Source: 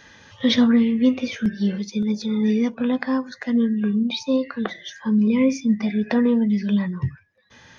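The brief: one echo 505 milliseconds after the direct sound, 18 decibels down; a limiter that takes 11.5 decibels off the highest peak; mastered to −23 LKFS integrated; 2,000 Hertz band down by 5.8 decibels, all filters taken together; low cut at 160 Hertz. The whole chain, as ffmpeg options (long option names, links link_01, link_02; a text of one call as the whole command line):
ffmpeg -i in.wav -af "highpass=160,equalizer=frequency=2000:width_type=o:gain=-7,alimiter=limit=-19.5dB:level=0:latency=1,aecho=1:1:505:0.126,volume=4.5dB" out.wav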